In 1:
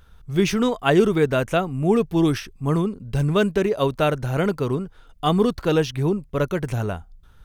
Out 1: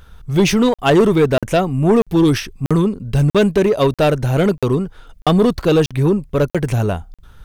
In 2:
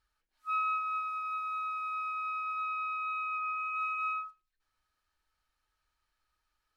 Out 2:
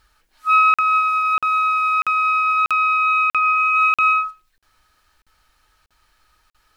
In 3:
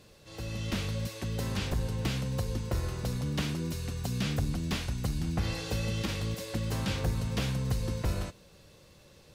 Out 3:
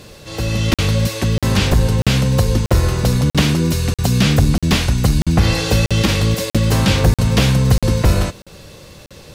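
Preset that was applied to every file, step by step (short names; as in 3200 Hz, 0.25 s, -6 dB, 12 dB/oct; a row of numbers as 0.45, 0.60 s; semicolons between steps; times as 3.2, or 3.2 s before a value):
dynamic EQ 1400 Hz, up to -4 dB, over -44 dBFS, Q 3.2; soft clip -15 dBFS; crackling interface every 0.64 s, samples 2048, zero, from 0.74; match loudness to -16 LUFS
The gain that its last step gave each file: +8.5, +20.0, +17.5 dB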